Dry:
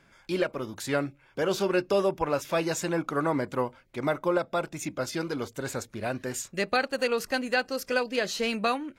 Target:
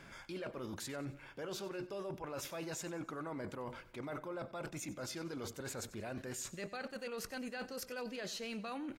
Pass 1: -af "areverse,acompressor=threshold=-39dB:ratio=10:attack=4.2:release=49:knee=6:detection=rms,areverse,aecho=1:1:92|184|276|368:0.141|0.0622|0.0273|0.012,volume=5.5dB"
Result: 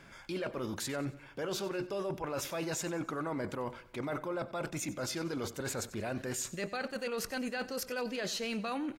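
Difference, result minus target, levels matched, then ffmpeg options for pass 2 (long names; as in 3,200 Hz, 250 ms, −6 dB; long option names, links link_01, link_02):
downward compressor: peak gain reduction −7 dB
-af "areverse,acompressor=threshold=-46.5dB:ratio=10:attack=4.2:release=49:knee=6:detection=rms,areverse,aecho=1:1:92|184|276|368:0.141|0.0622|0.0273|0.012,volume=5.5dB"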